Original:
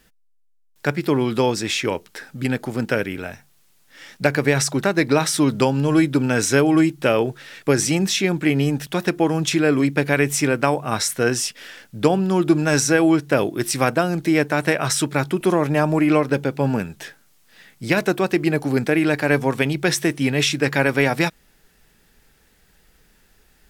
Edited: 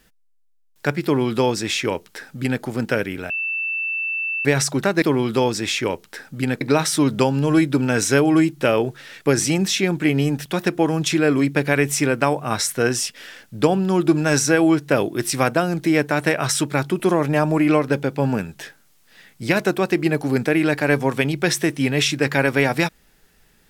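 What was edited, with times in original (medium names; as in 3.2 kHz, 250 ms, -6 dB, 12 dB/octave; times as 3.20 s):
1.04–2.63 s: copy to 5.02 s
3.30–4.45 s: bleep 2.66 kHz -21.5 dBFS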